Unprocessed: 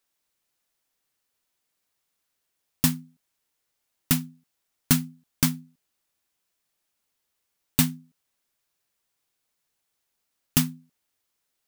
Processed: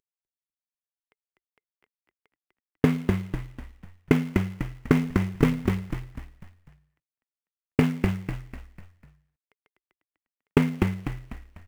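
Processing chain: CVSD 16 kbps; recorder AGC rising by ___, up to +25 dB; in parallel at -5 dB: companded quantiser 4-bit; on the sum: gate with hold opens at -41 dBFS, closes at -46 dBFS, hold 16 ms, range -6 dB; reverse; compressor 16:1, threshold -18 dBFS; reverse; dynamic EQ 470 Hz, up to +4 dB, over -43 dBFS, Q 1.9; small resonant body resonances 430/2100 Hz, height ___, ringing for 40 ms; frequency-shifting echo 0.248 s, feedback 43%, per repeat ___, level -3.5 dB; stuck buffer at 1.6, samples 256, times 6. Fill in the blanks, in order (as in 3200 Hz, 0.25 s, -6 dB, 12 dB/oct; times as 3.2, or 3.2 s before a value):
47 dB/s, 10 dB, -62 Hz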